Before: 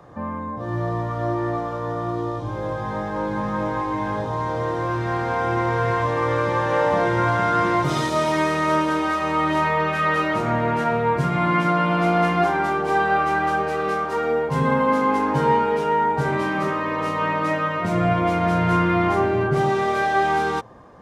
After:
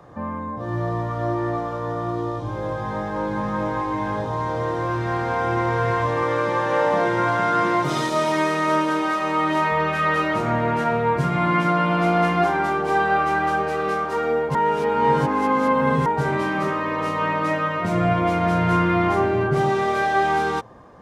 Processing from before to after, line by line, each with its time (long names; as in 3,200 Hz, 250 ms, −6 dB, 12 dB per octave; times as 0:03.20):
0:06.23–0:09.72: high-pass filter 150 Hz
0:14.55–0:16.06: reverse